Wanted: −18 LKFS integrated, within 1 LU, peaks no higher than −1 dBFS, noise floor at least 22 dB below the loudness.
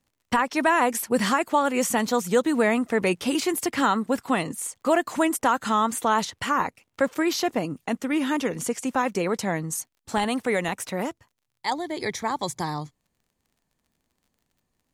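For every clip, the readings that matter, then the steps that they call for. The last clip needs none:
crackle rate 32 per second; integrated loudness −25.0 LKFS; sample peak −10.0 dBFS; target loudness −18.0 LKFS
→ click removal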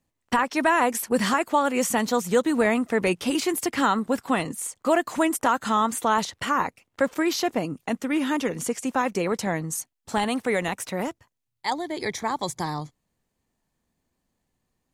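crackle rate 0.20 per second; integrated loudness −25.0 LKFS; sample peak −10.0 dBFS; target loudness −18.0 LKFS
→ level +7 dB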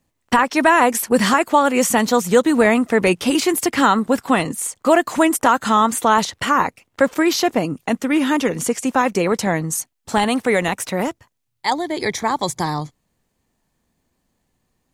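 integrated loudness −18.0 LKFS; sample peak −3.0 dBFS; background noise floor −72 dBFS

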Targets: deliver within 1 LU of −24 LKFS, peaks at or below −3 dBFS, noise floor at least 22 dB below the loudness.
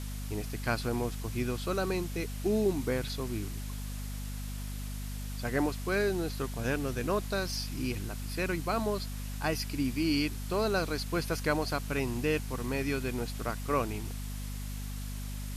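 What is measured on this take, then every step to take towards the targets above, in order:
mains hum 50 Hz; hum harmonics up to 250 Hz; level of the hum −35 dBFS; background noise floor −38 dBFS; target noise floor −55 dBFS; integrated loudness −33.0 LKFS; sample peak −15.5 dBFS; target loudness −24.0 LKFS
→ hum removal 50 Hz, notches 5
broadband denoise 17 dB, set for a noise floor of −38 dBFS
level +9 dB

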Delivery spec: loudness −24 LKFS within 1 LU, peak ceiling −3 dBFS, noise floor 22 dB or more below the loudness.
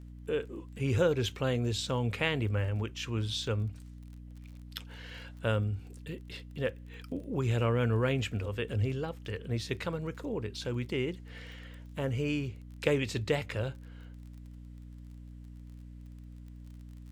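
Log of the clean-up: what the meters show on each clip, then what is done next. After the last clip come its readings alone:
crackle rate 30 per second; mains hum 60 Hz; hum harmonics up to 300 Hz; level of the hum −45 dBFS; integrated loudness −33.0 LKFS; sample peak −10.0 dBFS; target loudness −24.0 LKFS
→ click removal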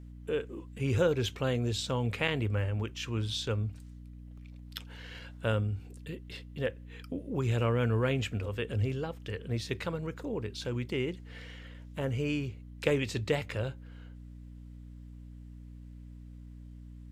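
crackle rate 0.058 per second; mains hum 60 Hz; hum harmonics up to 240 Hz; level of the hum −46 dBFS
→ hum removal 60 Hz, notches 4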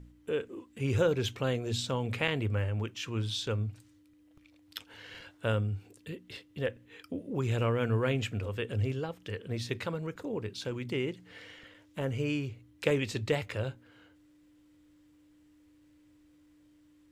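mains hum none found; integrated loudness −33.5 LKFS; sample peak −10.5 dBFS; target loudness −24.0 LKFS
→ level +9.5 dB
brickwall limiter −3 dBFS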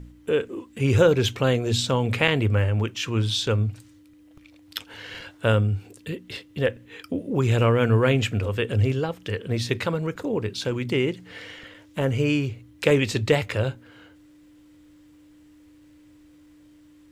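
integrated loudness −24.0 LKFS; sample peak −3.0 dBFS; background noise floor −53 dBFS

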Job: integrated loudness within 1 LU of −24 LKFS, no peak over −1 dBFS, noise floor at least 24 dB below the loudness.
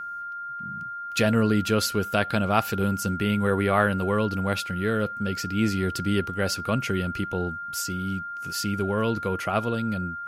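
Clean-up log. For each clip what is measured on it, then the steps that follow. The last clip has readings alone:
interfering tone 1,400 Hz; level of the tone −32 dBFS; integrated loudness −26.0 LKFS; sample peak −5.5 dBFS; target loudness −24.0 LKFS
→ notch filter 1,400 Hz, Q 30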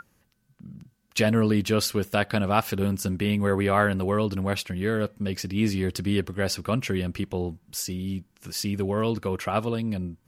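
interfering tone none found; integrated loudness −26.5 LKFS; sample peak −6.5 dBFS; target loudness −24.0 LKFS
→ level +2.5 dB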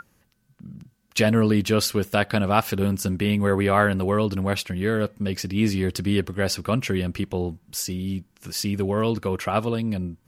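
integrated loudness −24.0 LKFS; sample peak −4.0 dBFS; background noise floor −65 dBFS

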